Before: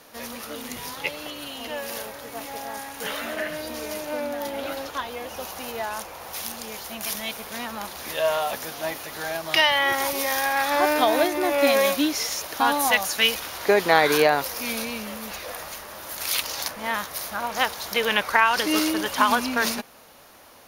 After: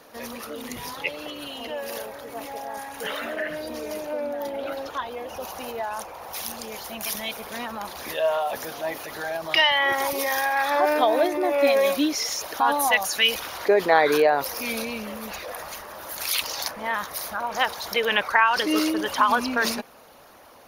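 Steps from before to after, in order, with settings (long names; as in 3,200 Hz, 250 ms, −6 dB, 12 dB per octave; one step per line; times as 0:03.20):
spectral envelope exaggerated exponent 1.5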